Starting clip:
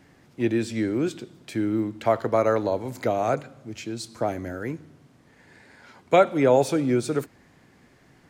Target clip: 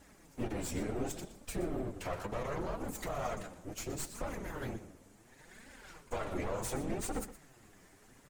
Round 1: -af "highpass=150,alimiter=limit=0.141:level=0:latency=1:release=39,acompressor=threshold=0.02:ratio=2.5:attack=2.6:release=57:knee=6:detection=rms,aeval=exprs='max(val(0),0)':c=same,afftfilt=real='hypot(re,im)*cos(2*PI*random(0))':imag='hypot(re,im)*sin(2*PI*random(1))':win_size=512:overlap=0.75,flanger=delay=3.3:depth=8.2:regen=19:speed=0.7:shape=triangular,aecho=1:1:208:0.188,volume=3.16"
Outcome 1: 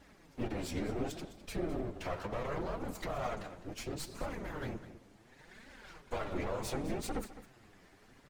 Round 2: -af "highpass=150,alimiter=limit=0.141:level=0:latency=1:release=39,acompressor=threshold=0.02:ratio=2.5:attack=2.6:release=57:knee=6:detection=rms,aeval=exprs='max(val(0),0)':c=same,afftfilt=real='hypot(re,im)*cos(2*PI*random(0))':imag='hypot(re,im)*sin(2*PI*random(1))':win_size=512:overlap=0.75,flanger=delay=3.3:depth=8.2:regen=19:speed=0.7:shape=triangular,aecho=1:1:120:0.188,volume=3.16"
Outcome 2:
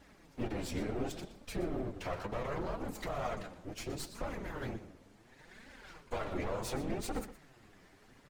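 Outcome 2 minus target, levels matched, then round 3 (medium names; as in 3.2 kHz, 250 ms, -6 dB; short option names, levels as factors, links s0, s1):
8 kHz band -5.0 dB
-af "highpass=150,highshelf=f=5700:t=q:w=1.5:g=8,alimiter=limit=0.141:level=0:latency=1:release=39,acompressor=threshold=0.02:ratio=2.5:attack=2.6:release=57:knee=6:detection=rms,aeval=exprs='max(val(0),0)':c=same,afftfilt=real='hypot(re,im)*cos(2*PI*random(0))':imag='hypot(re,im)*sin(2*PI*random(1))':win_size=512:overlap=0.75,flanger=delay=3.3:depth=8.2:regen=19:speed=0.7:shape=triangular,aecho=1:1:120:0.188,volume=3.16"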